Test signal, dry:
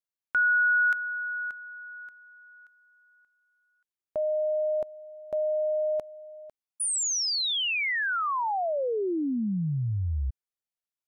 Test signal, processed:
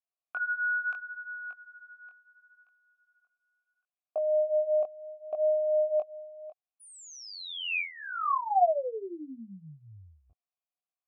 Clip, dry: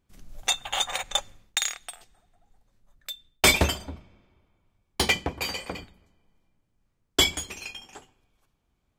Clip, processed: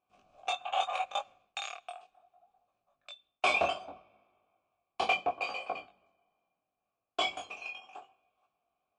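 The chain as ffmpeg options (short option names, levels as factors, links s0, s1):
-filter_complex "[0:a]apsyclip=5.62,flanger=delay=19:depth=4.3:speed=0.71,asplit=3[s0][s1][s2];[s0]bandpass=f=730:t=q:w=8,volume=1[s3];[s1]bandpass=f=1090:t=q:w=8,volume=0.501[s4];[s2]bandpass=f=2440:t=q:w=8,volume=0.355[s5];[s3][s4][s5]amix=inputs=3:normalize=0,volume=0.668" -ar 22050 -c:a libmp3lame -b:a 80k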